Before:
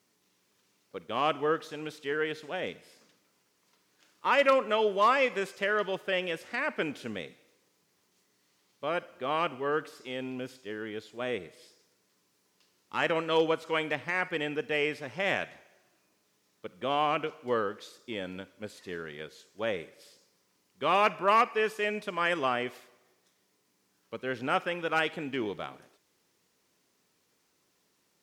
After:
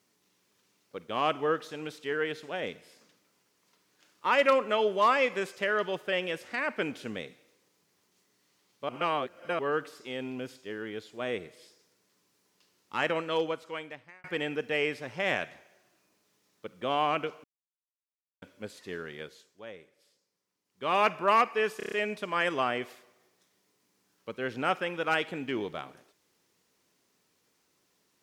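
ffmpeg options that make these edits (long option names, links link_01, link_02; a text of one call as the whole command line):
ffmpeg -i in.wav -filter_complex "[0:a]asplit=13[link_01][link_02][link_03][link_04][link_05][link_06][link_07][link_08][link_09][link_10][link_11][link_12][link_13];[link_01]atrim=end=8.892[link_14];[link_02]atrim=start=8.888:end=9.592,asetpts=PTS-STARTPTS,areverse[link_15];[link_03]atrim=start=9.588:end=14.24,asetpts=PTS-STARTPTS,afade=type=out:start_time=3.372:duration=1.28[link_16];[link_04]atrim=start=14.24:end=17.44,asetpts=PTS-STARTPTS,afade=type=in:duration=0.004:curve=hsin,afade=type=out:start_time=3.196:duration=0.004:curve=hsin[link_17];[link_05]atrim=start=17.44:end=18.42,asetpts=PTS-STARTPTS,volume=0[link_18];[link_06]atrim=start=18.42:end=19.62,asetpts=PTS-STARTPTS,afade=type=in:duration=0.004:curve=hsin,afade=type=out:start_time=0.82:duration=0.38:silence=0.223872[link_19];[link_07]atrim=start=19.62:end=20.64,asetpts=PTS-STARTPTS,volume=-13dB[link_20];[link_08]atrim=start=20.64:end=21.802,asetpts=PTS-STARTPTS,afade=type=in:duration=0.38:silence=0.223872[link_21];[link_09]atrim=start=21.768:end=21.802[link_22];[link_10]atrim=start=21.768:end=21.802[link_23];[link_11]atrim=start=21.768:end=21.802[link_24];[link_12]atrim=start=21.768:end=21.802[link_25];[link_13]atrim=start=21.768[link_26];[link_14][link_15]acrossfade=duration=0.004:curve1=hsin:curve2=hsin[link_27];[link_16][link_17][link_18][link_19][link_20][link_21]concat=n=6:v=0:a=1[link_28];[link_27][link_28]acrossfade=duration=0.004:curve1=hsin:curve2=hsin[link_29];[link_29][link_22]acrossfade=duration=0.004:curve1=hsin:curve2=hsin[link_30];[link_30][link_23]acrossfade=duration=0.004:curve1=hsin:curve2=hsin[link_31];[link_31][link_24]acrossfade=duration=0.004:curve1=hsin:curve2=hsin[link_32];[link_32][link_25]acrossfade=duration=0.004:curve1=hsin:curve2=hsin[link_33];[link_33][link_26]acrossfade=duration=0.004:curve1=hsin:curve2=hsin" out.wav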